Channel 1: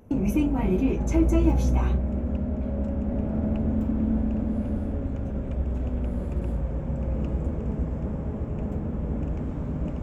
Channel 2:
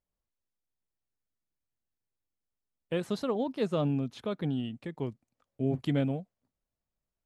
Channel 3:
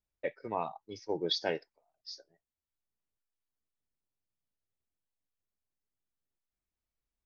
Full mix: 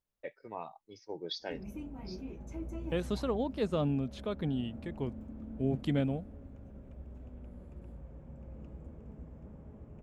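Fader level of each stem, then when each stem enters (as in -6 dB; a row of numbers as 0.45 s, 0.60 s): -20.0 dB, -2.0 dB, -7.5 dB; 1.40 s, 0.00 s, 0.00 s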